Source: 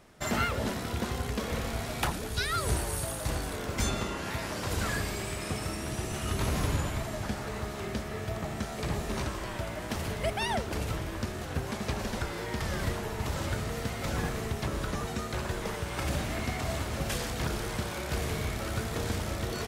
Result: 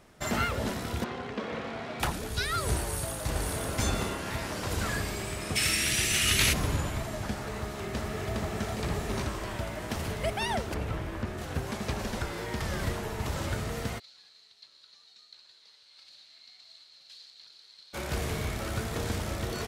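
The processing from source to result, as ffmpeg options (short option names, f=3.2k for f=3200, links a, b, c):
-filter_complex "[0:a]asettb=1/sr,asplit=3[a][b][c];[a]atrim=end=1.044[d];[b]atrim=start=1.04:end=2,asetpts=PTS-STARTPTS,afade=t=in:d=0.004:c=qsin,afade=t=out:st=0.956:d=0.004:c=qsin,highpass=190,lowpass=3.1k[e];[c]atrim=start=1.996[f];[d][e]acrossfade=d=0.004:c1=hsin:c2=qsin[g];[g][f]acrossfade=d=0.004:c1=qsin:c2=hsin,asplit=2[h][i];[i]afade=t=in:st=2.82:d=0.01,afade=t=out:st=3.61:d=0.01,aecho=0:1:530|1060|1590|2120:0.749894|0.224968|0.0674905|0.0202471[j];[h][j]amix=inputs=2:normalize=0,asplit=3[k][l][m];[k]afade=t=out:st=5.55:d=0.02[n];[l]highshelf=f=1.5k:t=q:w=1.5:g=13.5,afade=t=in:st=5.55:d=0.02,afade=t=out:st=6.52:d=0.02[o];[m]afade=t=in:st=6.52:d=0.02[p];[n][o][p]amix=inputs=3:normalize=0,asplit=2[q][r];[r]afade=t=in:st=7.52:d=0.01,afade=t=out:st=8.34:d=0.01,aecho=0:1:410|820|1230|1640|2050|2460|2870|3280|3690|4100|4510:0.749894|0.487431|0.31683|0.20594|0.133861|0.0870095|0.0565562|0.0367615|0.023895|0.0155317|0.0100956[s];[q][s]amix=inputs=2:normalize=0,asettb=1/sr,asplit=3[t][u][v];[t]atrim=end=10.744[w];[u]atrim=start=10.74:end=11.38,asetpts=PTS-STARTPTS,afade=t=in:d=0.004:c=qsin,afade=t=out:st=0.636:d=0.004:c=qsin,acrossover=split=3000[x][y];[y]acompressor=threshold=-55dB:ratio=4:attack=1:release=60[z];[x][z]amix=inputs=2:normalize=0[aa];[v]atrim=start=11.376[ab];[w][aa]acrossfade=d=0.004:c1=hsin:c2=qsin[ac];[ac][ab]acrossfade=d=0.004:c1=qsin:c2=hsin,asplit=3[ad][ae][af];[ad]afade=t=out:st=13.98:d=0.02[ag];[ae]bandpass=f=4.2k:t=q:w=12,afade=t=in:st=13.98:d=0.02,afade=t=out:st=17.93:d=0.02[ah];[af]afade=t=in:st=17.93:d=0.02[ai];[ag][ah][ai]amix=inputs=3:normalize=0"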